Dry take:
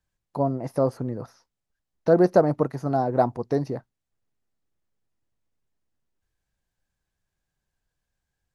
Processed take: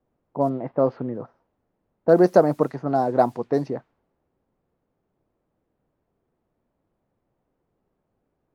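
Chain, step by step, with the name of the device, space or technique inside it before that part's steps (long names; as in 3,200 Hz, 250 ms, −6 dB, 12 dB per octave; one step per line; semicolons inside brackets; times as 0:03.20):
high-pass filter 170 Hz
cassette deck with a dynamic noise filter (white noise bed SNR 33 dB; low-pass that shuts in the quiet parts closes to 470 Hz, open at −18.5 dBFS)
0:00.49–0:01.15: low-pass filter 3,600 Hz 24 dB per octave
level +2.5 dB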